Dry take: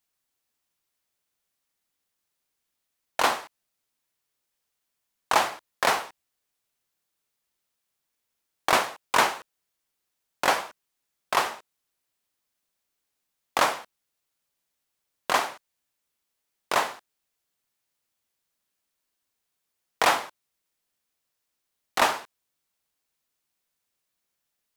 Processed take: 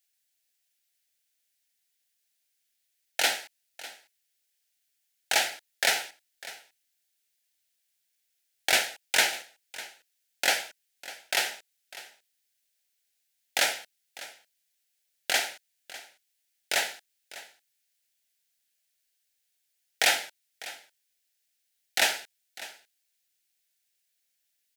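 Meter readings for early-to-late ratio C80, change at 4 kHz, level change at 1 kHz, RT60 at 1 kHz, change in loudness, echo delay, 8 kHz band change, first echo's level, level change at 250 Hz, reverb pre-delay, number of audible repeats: no reverb, +3.5 dB, -10.5 dB, no reverb, -1.0 dB, 600 ms, +4.5 dB, -17.5 dB, -9.5 dB, no reverb, 1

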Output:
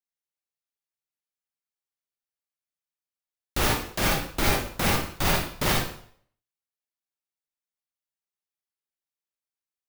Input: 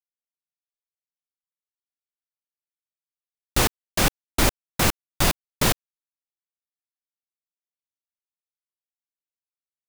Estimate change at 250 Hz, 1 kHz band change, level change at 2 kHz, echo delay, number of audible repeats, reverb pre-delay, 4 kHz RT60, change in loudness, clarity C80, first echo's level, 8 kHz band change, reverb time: -2.0 dB, -0.5 dB, -0.5 dB, no echo, no echo, 35 ms, 0.55 s, -2.0 dB, 5.0 dB, no echo, -5.0 dB, 0.55 s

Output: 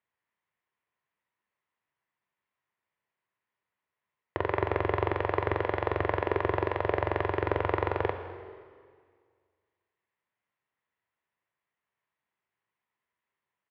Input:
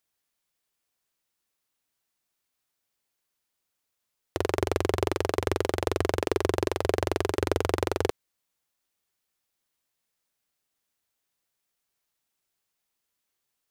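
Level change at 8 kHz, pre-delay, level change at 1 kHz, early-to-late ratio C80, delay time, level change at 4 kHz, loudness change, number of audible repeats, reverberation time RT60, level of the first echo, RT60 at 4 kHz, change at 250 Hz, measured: under -30 dB, 6 ms, +2.0 dB, 9.0 dB, 207 ms, -10.0 dB, -1.5 dB, 1, 1.9 s, -19.0 dB, 1.8 s, -4.0 dB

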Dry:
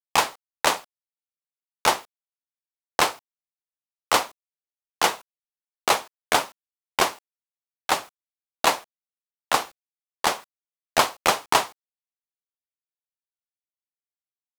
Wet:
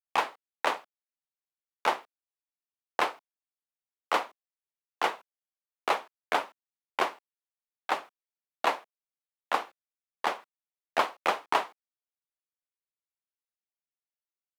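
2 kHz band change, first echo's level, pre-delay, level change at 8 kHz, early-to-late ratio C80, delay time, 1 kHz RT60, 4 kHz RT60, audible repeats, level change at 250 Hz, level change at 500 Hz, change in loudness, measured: -6.5 dB, no echo, no reverb, -19.0 dB, no reverb, no echo, no reverb, no reverb, no echo, -8.0 dB, -5.5 dB, -7.0 dB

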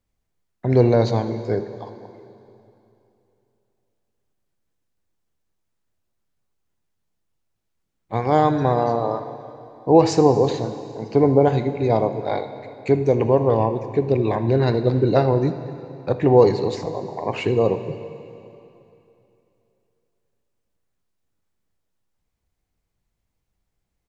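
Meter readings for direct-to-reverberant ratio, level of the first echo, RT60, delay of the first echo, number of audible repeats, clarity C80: 9.0 dB, -18.5 dB, 2.9 s, 79 ms, 1, 11.0 dB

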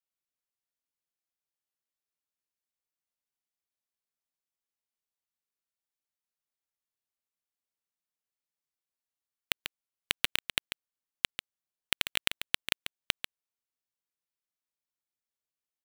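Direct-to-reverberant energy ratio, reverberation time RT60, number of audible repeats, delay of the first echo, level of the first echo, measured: no reverb, no reverb, 1, 142 ms, -10.0 dB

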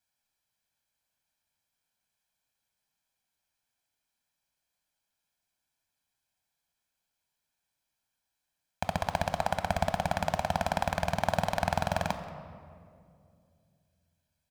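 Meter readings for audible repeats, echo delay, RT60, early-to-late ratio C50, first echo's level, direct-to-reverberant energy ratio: 1, 180 ms, 2.4 s, 10.0 dB, -21.0 dB, 8.5 dB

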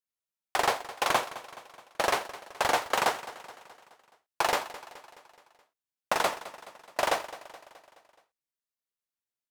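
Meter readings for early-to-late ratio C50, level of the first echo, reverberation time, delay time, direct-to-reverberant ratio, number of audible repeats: no reverb, -16.0 dB, no reverb, 212 ms, no reverb, 4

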